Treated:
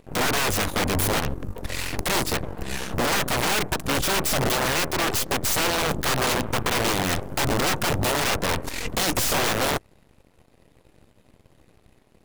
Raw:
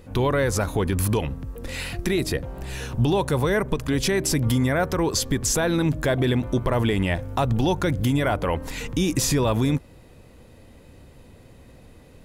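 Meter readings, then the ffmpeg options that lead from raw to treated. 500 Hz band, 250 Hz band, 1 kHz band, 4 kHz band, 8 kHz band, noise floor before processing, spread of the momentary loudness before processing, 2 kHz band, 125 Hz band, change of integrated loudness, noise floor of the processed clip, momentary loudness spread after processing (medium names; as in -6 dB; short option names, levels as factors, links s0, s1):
-3.0 dB, -5.5 dB, +3.5 dB, +5.5 dB, +2.5 dB, -49 dBFS, 8 LU, +4.5 dB, -6.5 dB, 0.0 dB, -59 dBFS, 7 LU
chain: -af "aeval=exprs='(mod(7.94*val(0)+1,2)-1)/7.94':c=same,aeval=exprs='0.133*(cos(1*acos(clip(val(0)/0.133,-1,1)))-cos(1*PI/2))+0.0168*(cos(7*acos(clip(val(0)/0.133,-1,1)))-cos(7*PI/2))+0.0299*(cos(8*acos(clip(val(0)/0.133,-1,1)))-cos(8*PI/2))':c=same"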